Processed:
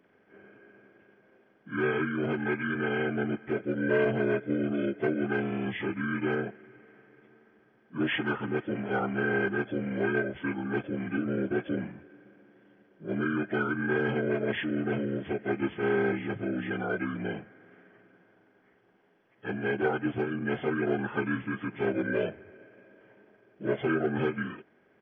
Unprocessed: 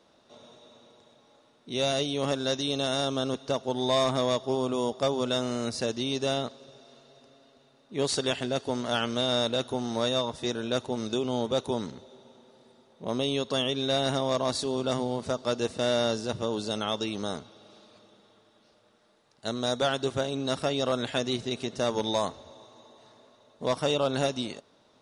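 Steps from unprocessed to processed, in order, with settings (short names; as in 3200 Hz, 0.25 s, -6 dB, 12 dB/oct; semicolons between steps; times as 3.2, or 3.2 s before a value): inharmonic rescaling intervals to 75%; pitch shift -3 st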